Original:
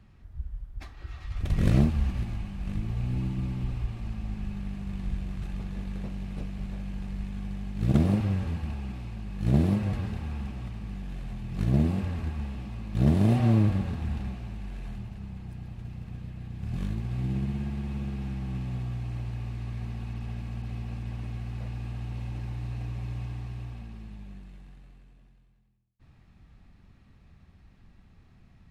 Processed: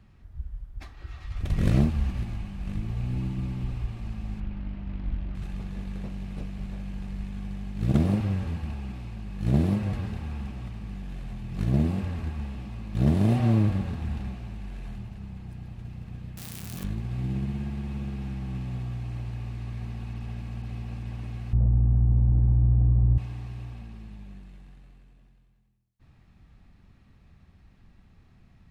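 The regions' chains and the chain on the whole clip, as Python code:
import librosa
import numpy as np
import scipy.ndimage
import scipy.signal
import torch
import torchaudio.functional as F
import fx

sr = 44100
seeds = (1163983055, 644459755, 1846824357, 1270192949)

y = fx.chain(x, sr, fx.air_absorb(metres=240.0),
    fx.comb(ms=3.2, depth=0.38),
    fx.doppler_dist(depth_ms=0.78), at=(4.4, 5.35))
y = fx.chain(y, sr, fx.crossing_spikes(level_db=-26.5),
    fx.highpass(hz=240.0, slope=6),
    fx.env_flatten(amount_pct=50), at=(16.37, 16.84))
y = fx.chain(y, sr, fx.lowpass(hz=1000.0, slope=12),
    fx.tilt_eq(slope=-4.0), at=(21.53, 23.18))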